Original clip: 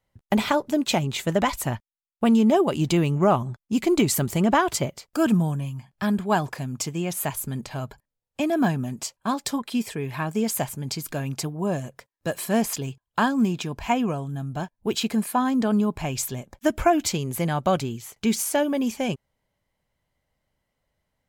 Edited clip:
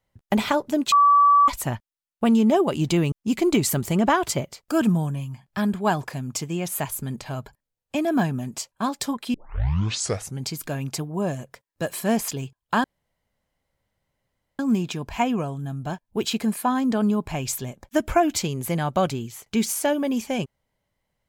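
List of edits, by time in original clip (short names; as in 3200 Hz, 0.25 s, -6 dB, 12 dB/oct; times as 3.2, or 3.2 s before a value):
0.92–1.48 bleep 1150 Hz -12 dBFS
3.12–3.57 cut
9.79 tape start 1.09 s
13.29 insert room tone 1.75 s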